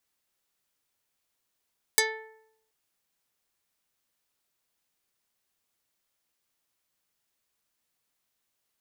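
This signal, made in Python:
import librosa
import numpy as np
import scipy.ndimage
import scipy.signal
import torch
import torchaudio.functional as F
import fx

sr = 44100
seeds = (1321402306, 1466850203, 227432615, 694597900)

y = fx.pluck(sr, length_s=0.73, note=69, decay_s=0.77, pick=0.32, brightness='dark')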